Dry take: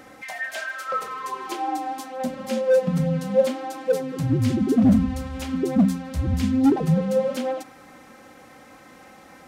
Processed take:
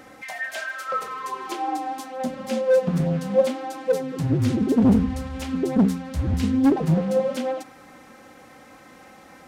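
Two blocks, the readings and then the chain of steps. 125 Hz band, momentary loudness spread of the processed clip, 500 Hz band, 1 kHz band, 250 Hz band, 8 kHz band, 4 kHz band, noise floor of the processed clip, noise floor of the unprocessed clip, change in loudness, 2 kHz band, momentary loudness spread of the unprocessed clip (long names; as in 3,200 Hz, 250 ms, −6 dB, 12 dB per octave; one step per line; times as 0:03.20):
0.0 dB, 12 LU, 0.0 dB, 0.0 dB, −0.5 dB, −0.5 dB, 0.0 dB, −48 dBFS, −48 dBFS, 0.0 dB, 0.0 dB, 12 LU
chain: highs frequency-modulated by the lows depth 0.44 ms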